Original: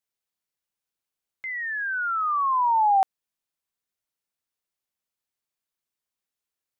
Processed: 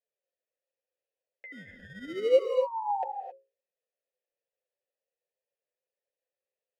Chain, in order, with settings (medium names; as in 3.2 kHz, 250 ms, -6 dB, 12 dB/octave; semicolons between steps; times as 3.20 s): high-order bell 600 Hz +11.5 dB; hum notches 60/120/180/240/300/360/420/480/540 Hz; peak limiter -10 dBFS, peak gain reduction 6.5 dB; flange 0.3 Hz, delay 4.3 ms, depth 7 ms, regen +22%; 1.52–2.39 s: sample-rate reducer 1.7 kHz, jitter 0%; vowel filter e; gated-style reverb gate 290 ms rising, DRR 5 dB; trim +7.5 dB